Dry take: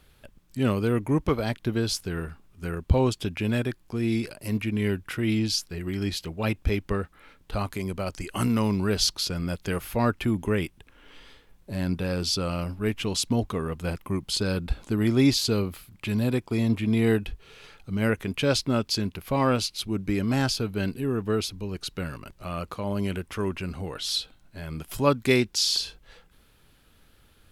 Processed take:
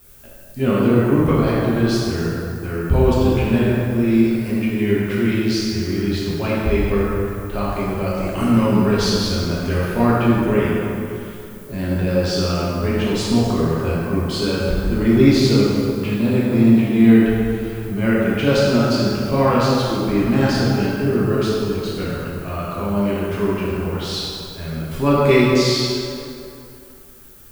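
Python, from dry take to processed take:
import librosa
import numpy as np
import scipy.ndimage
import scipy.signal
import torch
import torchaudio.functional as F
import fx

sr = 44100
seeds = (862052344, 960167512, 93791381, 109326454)

y = fx.lowpass(x, sr, hz=2900.0, slope=6)
y = fx.dmg_noise_colour(y, sr, seeds[0], colour='violet', level_db=-54.0)
y = fx.rev_plate(y, sr, seeds[1], rt60_s=2.6, hf_ratio=0.6, predelay_ms=0, drr_db=-7.5)
y = F.gain(torch.from_numpy(y), 1.0).numpy()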